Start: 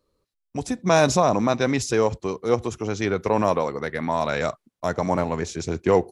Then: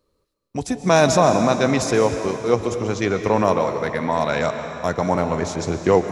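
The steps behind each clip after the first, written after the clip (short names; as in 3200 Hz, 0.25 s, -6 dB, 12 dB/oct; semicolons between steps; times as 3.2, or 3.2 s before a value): digital reverb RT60 2.7 s, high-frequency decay 0.95×, pre-delay 95 ms, DRR 7 dB; gain +2.5 dB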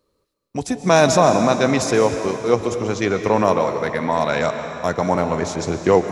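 low shelf 75 Hz -7 dB; gain +1.5 dB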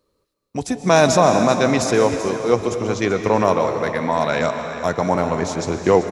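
echo 0.384 s -13 dB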